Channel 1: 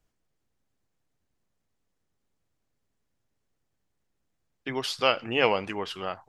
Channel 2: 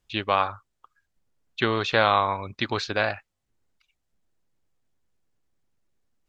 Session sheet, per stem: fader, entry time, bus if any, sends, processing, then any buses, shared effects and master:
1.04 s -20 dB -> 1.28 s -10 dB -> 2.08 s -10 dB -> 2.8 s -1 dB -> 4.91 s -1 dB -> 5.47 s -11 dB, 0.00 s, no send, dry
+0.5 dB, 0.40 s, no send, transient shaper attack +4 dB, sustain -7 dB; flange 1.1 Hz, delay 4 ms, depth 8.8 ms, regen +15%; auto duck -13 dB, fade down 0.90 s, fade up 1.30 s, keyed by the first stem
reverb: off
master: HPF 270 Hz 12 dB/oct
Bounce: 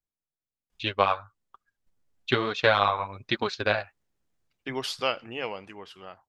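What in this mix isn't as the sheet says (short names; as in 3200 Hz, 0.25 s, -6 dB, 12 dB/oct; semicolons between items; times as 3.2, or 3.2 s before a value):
stem 2: entry 0.40 s -> 0.70 s; master: missing HPF 270 Hz 12 dB/oct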